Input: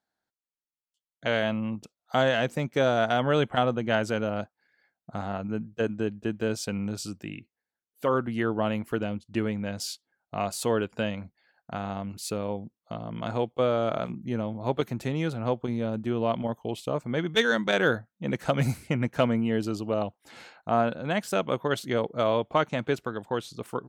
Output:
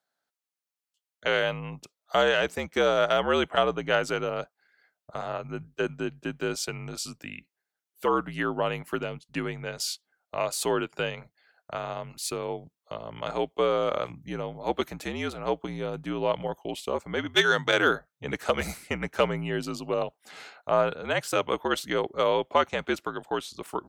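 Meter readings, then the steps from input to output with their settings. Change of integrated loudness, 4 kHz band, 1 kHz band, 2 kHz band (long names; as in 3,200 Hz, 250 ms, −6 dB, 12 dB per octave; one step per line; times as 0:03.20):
0.0 dB, +3.5 dB, +1.0 dB, +2.5 dB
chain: frequency shifter −63 Hz
high-pass filter 500 Hz 6 dB per octave
level +3.5 dB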